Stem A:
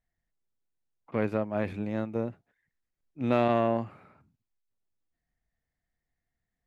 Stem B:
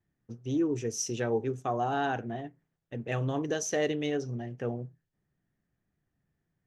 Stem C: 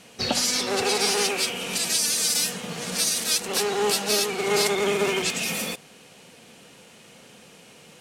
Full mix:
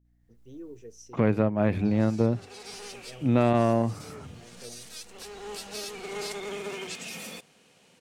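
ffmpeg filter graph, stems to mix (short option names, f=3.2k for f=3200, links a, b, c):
-filter_complex "[0:a]lowshelf=f=190:g=10.5,bandreject=f=50:t=h:w=6,bandreject=f=100:t=h:w=6,dynaudnorm=f=130:g=5:m=16.5dB,adelay=50,volume=0dB[a];[1:a]equalizer=f=470:t=o:w=0.77:g=6.5,aeval=exprs='val(0)+0.00398*(sin(2*PI*60*n/s)+sin(2*PI*2*60*n/s)/2+sin(2*PI*3*60*n/s)/3+sin(2*PI*4*60*n/s)/4+sin(2*PI*5*60*n/s)/5)':c=same,volume=-17.5dB,asplit=2[b][c];[2:a]equalizer=f=12k:w=2:g=-5,adelay=1650,volume=-10.5dB,afade=t=in:st=5.27:d=0.77:silence=0.398107[d];[c]apad=whole_len=425908[e];[d][e]sidechaincompress=threshold=-44dB:ratio=8:attack=16:release=108[f];[a][b][f]amix=inputs=3:normalize=0,acompressor=threshold=-35dB:ratio=1.5"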